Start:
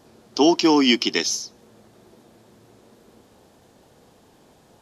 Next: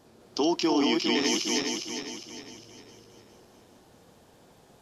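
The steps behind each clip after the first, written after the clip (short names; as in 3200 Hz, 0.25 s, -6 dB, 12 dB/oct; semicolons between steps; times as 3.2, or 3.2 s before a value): regenerating reverse delay 0.203 s, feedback 64%, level -3 dB; limiter -11.5 dBFS, peak gain reduction 9 dB; gain -4.5 dB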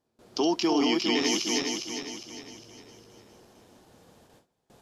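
gate with hold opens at -46 dBFS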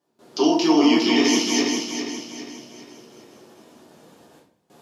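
HPF 160 Hz 12 dB/oct; shoebox room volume 54 m³, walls mixed, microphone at 0.97 m; gain +1 dB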